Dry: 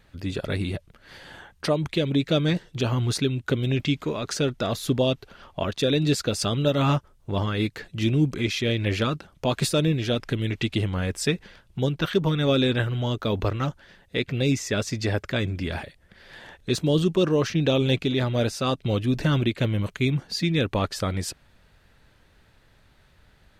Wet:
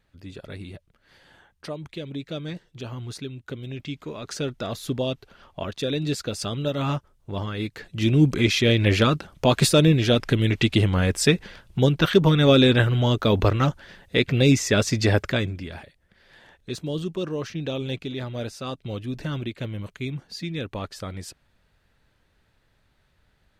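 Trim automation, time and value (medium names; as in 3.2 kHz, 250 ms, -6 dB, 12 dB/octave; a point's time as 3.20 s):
3.78 s -10.5 dB
4.38 s -4 dB
7.65 s -4 dB
8.31 s +5.5 dB
15.25 s +5.5 dB
15.70 s -7.5 dB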